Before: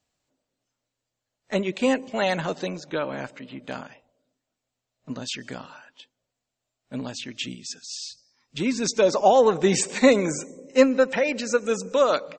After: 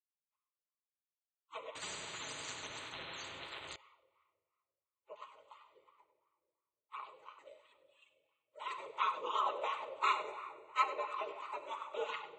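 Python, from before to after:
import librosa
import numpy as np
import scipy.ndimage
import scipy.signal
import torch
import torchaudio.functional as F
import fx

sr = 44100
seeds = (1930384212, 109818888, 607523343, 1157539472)

y = fx.highpass(x, sr, hz=220.0, slope=6)
y = fx.high_shelf(y, sr, hz=6500.0, db=5.5)
y = fx.spec_gate(y, sr, threshold_db=-25, keep='weak')
y = fx.fixed_phaser(y, sr, hz=1100.0, stages=8)
y = fx.room_shoebox(y, sr, seeds[0], volume_m3=3600.0, walls='mixed', distance_m=1.4)
y = fx.wah_lfo(y, sr, hz=2.9, low_hz=530.0, high_hz=1200.0, q=4.5)
y = y + 10.0 ** (-13.5 / 20.0) * np.pad(y, (int(97 * sr / 1000.0), 0))[:len(y)]
y = fx.spectral_comp(y, sr, ratio=10.0, at=(1.75, 3.76))
y = y * librosa.db_to_amplitude(15.0)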